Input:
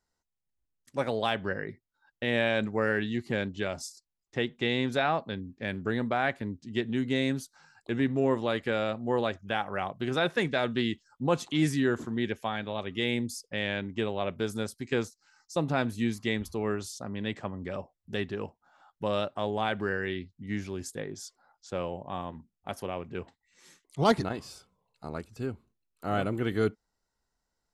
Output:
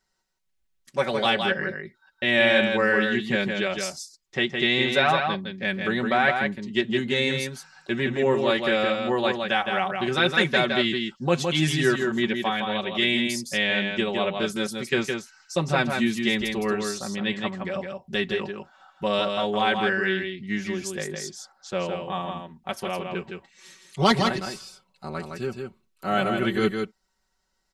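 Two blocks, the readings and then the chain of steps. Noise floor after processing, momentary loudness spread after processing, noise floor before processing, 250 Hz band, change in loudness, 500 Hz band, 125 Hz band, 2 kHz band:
-73 dBFS, 13 LU, -84 dBFS, +4.5 dB, +6.5 dB, +5.5 dB, +3.0 dB, +10.0 dB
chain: bell 3000 Hz +6.5 dB 2.8 oct; comb 5.3 ms, depth 80%; on a send: echo 0.163 s -5 dB; on the sum: gain +1 dB

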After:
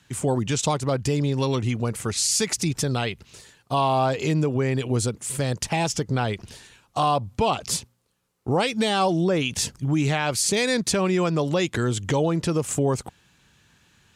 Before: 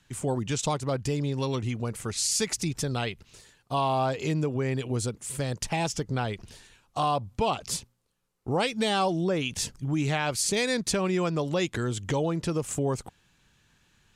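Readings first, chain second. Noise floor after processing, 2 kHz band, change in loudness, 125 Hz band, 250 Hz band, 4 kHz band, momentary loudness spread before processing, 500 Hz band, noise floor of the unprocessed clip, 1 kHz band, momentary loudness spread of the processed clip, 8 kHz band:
-63 dBFS, +4.0 dB, +4.5 dB, +5.0 dB, +5.0 dB, +4.5 dB, 7 LU, +4.5 dB, -67 dBFS, +4.5 dB, 6 LU, +4.5 dB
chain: HPF 54 Hz; in parallel at -0.5 dB: limiter -20.5 dBFS, peak gain reduction 8.5 dB

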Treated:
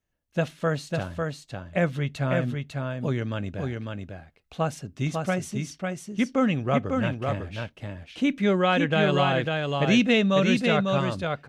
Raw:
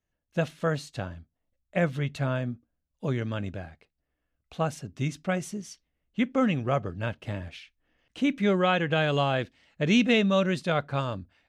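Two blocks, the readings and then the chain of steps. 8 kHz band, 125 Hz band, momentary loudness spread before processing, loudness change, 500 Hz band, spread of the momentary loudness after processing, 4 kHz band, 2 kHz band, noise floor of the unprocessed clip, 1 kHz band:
+3.0 dB, +3.0 dB, 16 LU, +2.0 dB, +3.0 dB, 13 LU, +3.0 dB, +3.0 dB, -82 dBFS, +3.0 dB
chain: echo 0.549 s -4 dB; gain +1.5 dB

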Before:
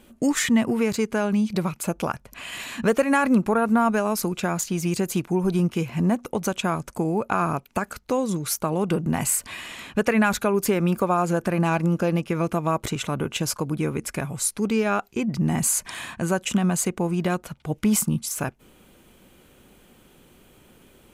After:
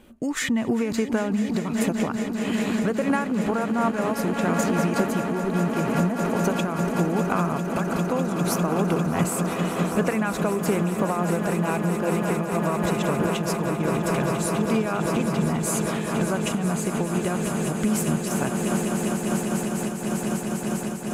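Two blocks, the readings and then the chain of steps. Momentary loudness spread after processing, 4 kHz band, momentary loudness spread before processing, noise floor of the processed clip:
3 LU, -1.5 dB, 9 LU, -30 dBFS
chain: high shelf 3600 Hz -6.5 dB; swelling echo 0.2 s, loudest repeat 8, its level -12 dB; compressor, threshold -21 dBFS, peak gain reduction 8 dB; noise-modulated level, depth 60%; gain +4.5 dB

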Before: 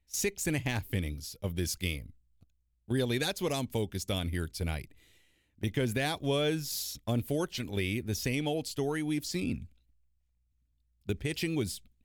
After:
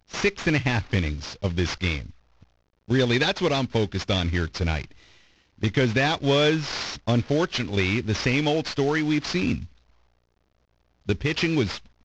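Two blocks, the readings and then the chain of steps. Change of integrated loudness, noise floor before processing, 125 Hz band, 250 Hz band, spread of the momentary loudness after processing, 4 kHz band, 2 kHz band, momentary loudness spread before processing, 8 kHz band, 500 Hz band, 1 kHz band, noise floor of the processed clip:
+8.5 dB, -74 dBFS, +8.5 dB, +8.5 dB, 8 LU, +9.0 dB, +11.5 dB, 8 LU, -1.0 dB, +8.5 dB, +10.5 dB, -68 dBFS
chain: CVSD 32 kbps; dynamic EQ 1800 Hz, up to +4 dB, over -46 dBFS, Q 0.73; gain +8.5 dB

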